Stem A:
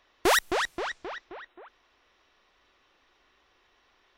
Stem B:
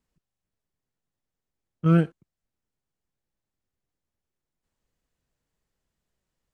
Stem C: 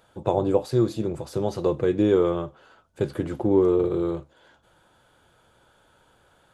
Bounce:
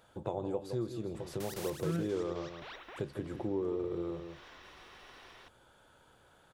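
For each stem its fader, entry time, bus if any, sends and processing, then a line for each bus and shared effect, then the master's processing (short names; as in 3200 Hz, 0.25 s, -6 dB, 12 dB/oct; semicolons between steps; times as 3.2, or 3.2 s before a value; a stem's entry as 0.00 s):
+2.5 dB, 1.15 s, no send, echo send -11.5 dB, spectral compressor 4:1; auto duck -16 dB, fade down 1.90 s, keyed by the third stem
-4.0 dB, 0.00 s, no send, no echo send, dry
-3.5 dB, 0.00 s, no send, echo send -11 dB, dry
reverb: off
echo: echo 0.16 s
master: compressor 2:1, threshold -41 dBFS, peak gain reduction 13 dB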